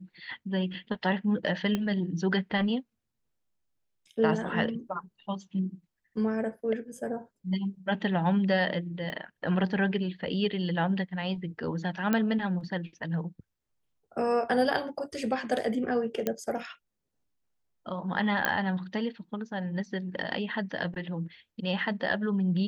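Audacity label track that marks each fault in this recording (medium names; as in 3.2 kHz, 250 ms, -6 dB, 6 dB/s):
1.750000	1.750000	pop -16 dBFS
9.100000	9.100000	pop -24 dBFS
12.130000	12.130000	pop -13 dBFS
16.270000	16.270000	pop -14 dBFS
18.450000	18.450000	pop -11 dBFS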